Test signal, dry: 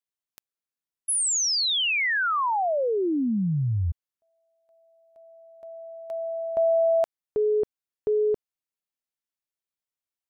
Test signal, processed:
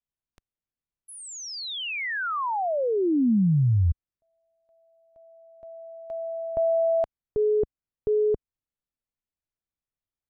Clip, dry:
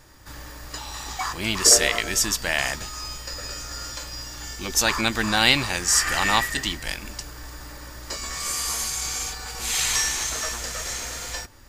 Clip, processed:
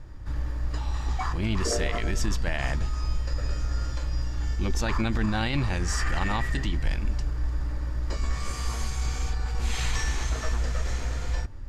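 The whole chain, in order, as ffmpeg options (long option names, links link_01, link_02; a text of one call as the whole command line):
ffmpeg -i in.wav -af "aemphasis=mode=reproduction:type=riaa,alimiter=limit=-14dB:level=0:latency=1:release=38,volume=-3dB" out.wav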